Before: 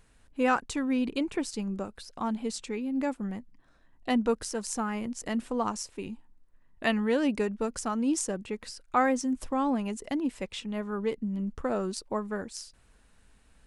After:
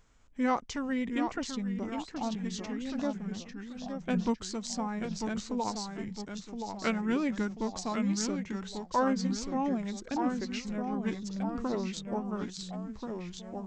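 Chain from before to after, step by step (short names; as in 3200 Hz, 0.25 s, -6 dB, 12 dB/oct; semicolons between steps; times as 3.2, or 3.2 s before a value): echoes that change speed 0.69 s, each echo -1 st, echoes 3, each echo -6 dB; downsampling 22050 Hz; formant shift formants -4 st; gain -3 dB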